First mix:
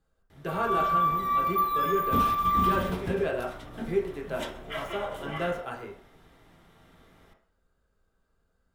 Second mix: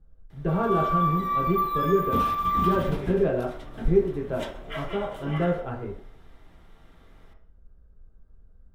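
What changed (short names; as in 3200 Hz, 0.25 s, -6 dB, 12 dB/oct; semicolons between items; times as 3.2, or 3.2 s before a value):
speech: add tilt -4.5 dB/oct; master: add high shelf 6300 Hz -5 dB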